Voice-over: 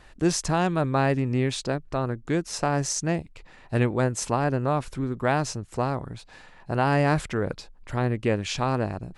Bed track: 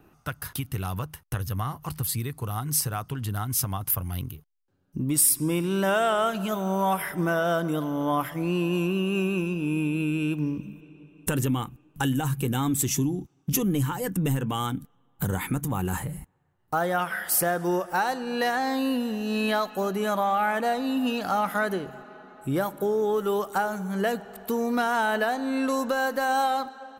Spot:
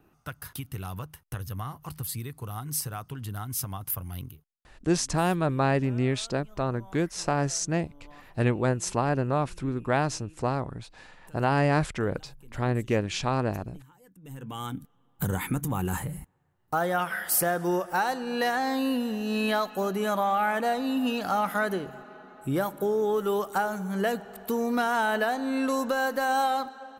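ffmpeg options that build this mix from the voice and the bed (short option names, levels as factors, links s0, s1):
-filter_complex "[0:a]adelay=4650,volume=0.841[s0];[1:a]volume=11.2,afade=t=out:st=4.24:d=0.37:silence=0.0794328,afade=t=in:st=14.22:d=0.83:silence=0.0473151[s1];[s0][s1]amix=inputs=2:normalize=0"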